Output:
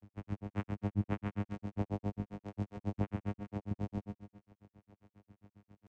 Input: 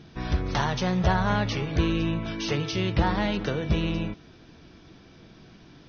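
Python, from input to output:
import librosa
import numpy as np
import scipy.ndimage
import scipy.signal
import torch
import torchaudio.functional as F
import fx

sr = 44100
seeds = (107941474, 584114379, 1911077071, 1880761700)

p1 = fx.cvsd(x, sr, bps=16000)
p2 = fx.vocoder(p1, sr, bands=4, carrier='saw', carrier_hz=102.0)
p3 = p2 + fx.echo_single(p2, sr, ms=220, db=-13.0, dry=0)
p4 = fx.granulator(p3, sr, seeds[0], grain_ms=99.0, per_s=7.4, spray_ms=20.0, spread_st=0)
y = p4 * librosa.db_to_amplitude(-4.5)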